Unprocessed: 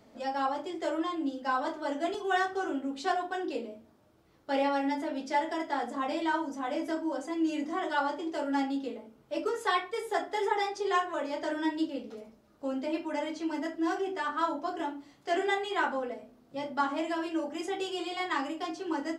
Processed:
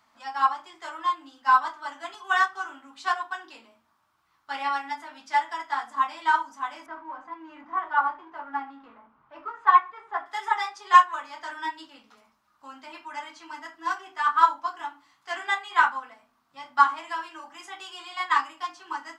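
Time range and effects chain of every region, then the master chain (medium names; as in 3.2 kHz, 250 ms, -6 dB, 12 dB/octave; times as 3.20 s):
6.86–10.26 s: companding laws mixed up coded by mu + low-pass 1.4 kHz
whole clip: resonant low shelf 720 Hz -13.5 dB, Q 3; upward expansion 1.5:1, over -38 dBFS; trim +8.5 dB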